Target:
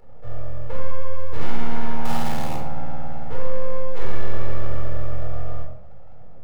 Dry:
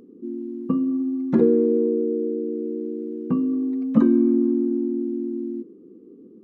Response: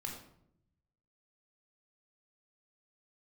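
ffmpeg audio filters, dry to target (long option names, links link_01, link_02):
-filter_complex "[0:a]asoftclip=type=tanh:threshold=-21dB,asettb=1/sr,asplit=3[link_01][link_02][link_03];[link_01]atrim=end=2.054[link_04];[link_02]atrim=start=2.05:end=2.57,asetpts=PTS-STARTPTS,afade=type=in:duration=0.004:curve=qsin,afade=type=out:start_time=0.516:duration=0.004:curve=qsin,acrusher=bits=5:dc=4:mix=0:aa=0.000001[link_05];[link_03]atrim=start=2.566[link_06];[link_04][link_05]acrossfade=duration=0.004:curve1=hsin:curve2=qsin[link_07];[link_07][link_06]acrossfade=duration=0.004:curve1=qsin:curve2=hsin,aeval=exprs='abs(val(0))':channel_layout=same[link_08];[1:a]atrim=start_sample=2205[link_09];[link_08][link_09]afir=irnorm=-1:irlink=0"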